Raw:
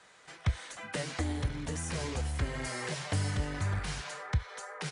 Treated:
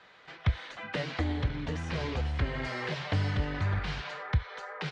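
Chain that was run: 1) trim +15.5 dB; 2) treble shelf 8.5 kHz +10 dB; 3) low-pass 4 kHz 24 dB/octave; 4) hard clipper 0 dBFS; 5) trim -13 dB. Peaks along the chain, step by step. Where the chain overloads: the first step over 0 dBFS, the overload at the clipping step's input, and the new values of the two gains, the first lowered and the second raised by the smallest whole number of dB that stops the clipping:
-3.5 dBFS, -3.5 dBFS, -3.5 dBFS, -3.5 dBFS, -16.5 dBFS; nothing clips

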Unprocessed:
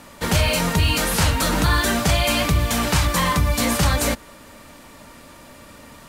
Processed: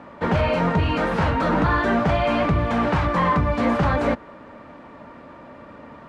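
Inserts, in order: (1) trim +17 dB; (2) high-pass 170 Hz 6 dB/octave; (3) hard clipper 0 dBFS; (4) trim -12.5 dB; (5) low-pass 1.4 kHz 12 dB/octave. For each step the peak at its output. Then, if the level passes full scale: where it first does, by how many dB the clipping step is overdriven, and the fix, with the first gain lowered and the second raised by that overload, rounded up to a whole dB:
+9.5 dBFS, +9.5 dBFS, 0.0 dBFS, -12.5 dBFS, -12.0 dBFS; step 1, 9.5 dB; step 1 +7 dB, step 4 -2.5 dB

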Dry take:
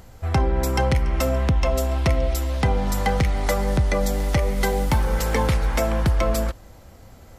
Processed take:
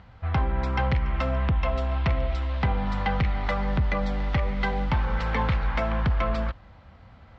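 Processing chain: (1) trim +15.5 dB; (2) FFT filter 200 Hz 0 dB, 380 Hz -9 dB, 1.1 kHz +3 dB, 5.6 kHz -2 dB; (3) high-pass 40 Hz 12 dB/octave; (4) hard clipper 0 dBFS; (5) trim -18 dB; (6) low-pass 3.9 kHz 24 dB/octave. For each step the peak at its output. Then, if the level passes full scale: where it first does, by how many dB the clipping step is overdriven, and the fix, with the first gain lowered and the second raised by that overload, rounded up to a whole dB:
+5.0 dBFS, +6.0 dBFS, +6.5 dBFS, 0.0 dBFS, -18.0 dBFS, -16.0 dBFS; step 1, 6.5 dB; step 1 +8.5 dB, step 5 -11 dB

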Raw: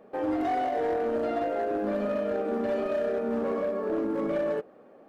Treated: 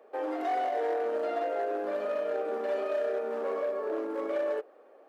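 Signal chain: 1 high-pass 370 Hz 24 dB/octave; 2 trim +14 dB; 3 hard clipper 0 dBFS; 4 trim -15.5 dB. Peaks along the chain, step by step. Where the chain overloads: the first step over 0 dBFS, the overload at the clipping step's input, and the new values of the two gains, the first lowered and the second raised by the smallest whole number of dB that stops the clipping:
-19.5 dBFS, -5.5 dBFS, -5.5 dBFS, -21.0 dBFS; nothing clips

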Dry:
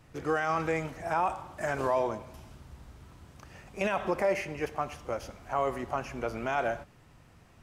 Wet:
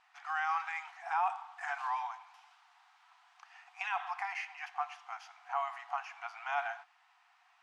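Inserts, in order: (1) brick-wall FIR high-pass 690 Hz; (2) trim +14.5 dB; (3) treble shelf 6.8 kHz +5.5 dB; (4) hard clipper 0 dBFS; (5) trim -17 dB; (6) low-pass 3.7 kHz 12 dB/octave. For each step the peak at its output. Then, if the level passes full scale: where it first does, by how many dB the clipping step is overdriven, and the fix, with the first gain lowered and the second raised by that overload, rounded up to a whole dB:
-18.0 dBFS, -3.5 dBFS, -3.5 dBFS, -3.5 dBFS, -20.5 dBFS, -20.5 dBFS; nothing clips

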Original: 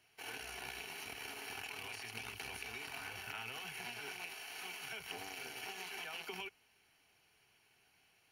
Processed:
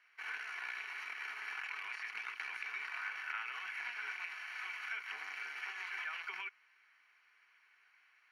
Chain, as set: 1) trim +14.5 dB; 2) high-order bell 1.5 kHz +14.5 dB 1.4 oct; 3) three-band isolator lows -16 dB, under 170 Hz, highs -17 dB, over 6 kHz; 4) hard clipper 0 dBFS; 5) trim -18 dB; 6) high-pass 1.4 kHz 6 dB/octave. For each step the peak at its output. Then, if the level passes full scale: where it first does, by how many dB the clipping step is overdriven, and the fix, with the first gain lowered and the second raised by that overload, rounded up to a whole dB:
-15.0 dBFS, -4.5 dBFS, -5.0 dBFS, -5.0 dBFS, -23.0 dBFS, -25.0 dBFS; nothing clips

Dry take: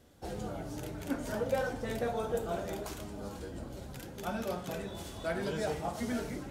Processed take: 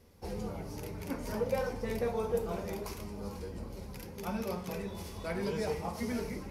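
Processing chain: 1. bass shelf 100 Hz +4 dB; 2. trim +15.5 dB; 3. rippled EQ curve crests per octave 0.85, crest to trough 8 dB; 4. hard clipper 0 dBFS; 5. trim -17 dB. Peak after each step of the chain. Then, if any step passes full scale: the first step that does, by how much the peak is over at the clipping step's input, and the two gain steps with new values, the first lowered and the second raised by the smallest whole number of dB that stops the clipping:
-18.5 dBFS, -3.0 dBFS, -2.5 dBFS, -2.5 dBFS, -19.5 dBFS; nothing clips

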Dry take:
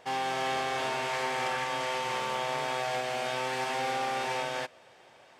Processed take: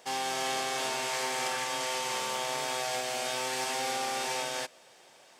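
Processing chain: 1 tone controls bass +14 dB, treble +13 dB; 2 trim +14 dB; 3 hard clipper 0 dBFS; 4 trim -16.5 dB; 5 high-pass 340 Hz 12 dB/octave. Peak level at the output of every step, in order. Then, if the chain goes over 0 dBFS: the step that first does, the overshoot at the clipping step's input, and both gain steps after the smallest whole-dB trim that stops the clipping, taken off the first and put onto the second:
-17.0 dBFS, -3.0 dBFS, -3.0 dBFS, -19.5 dBFS, -20.0 dBFS; nothing clips

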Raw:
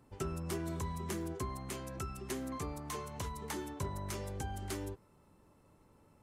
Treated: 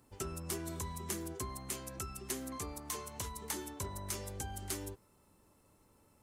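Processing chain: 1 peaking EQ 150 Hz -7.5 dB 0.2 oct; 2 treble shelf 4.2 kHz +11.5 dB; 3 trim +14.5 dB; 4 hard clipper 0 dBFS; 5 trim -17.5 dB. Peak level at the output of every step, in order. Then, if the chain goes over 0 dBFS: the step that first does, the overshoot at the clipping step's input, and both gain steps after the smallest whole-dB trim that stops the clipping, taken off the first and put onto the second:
-26.5 dBFS, -19.5 dBFS, -5.0 dBFS, -5.0 dBFS, -22.5 dBFS; nothing clips

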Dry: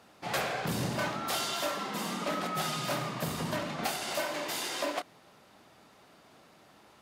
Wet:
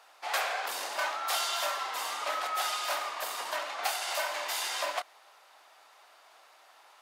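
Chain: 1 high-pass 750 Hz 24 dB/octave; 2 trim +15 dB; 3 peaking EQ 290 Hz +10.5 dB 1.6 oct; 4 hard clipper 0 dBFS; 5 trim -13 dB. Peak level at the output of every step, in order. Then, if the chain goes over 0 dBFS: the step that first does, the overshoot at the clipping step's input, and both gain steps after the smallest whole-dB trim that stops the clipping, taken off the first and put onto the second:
-18.5 dBFS, -3.5 dBFS, -4.0 dBFS, -4.0 dBFS, -17.0 dBFS; nothing clips

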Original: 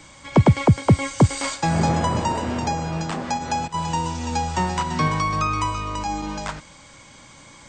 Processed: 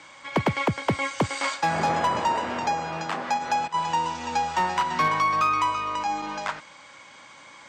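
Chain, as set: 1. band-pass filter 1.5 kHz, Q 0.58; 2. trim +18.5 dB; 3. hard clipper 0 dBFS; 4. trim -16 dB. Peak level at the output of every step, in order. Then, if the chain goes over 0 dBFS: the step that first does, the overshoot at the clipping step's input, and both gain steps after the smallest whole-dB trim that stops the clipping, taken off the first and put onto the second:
-10.5 dBFS, +8.0 dBFS, 0.0 dBFS, -16.0 dBFS; step 2, 8.0 dB; step 2 +10.5 dB, step 4 -8 dB

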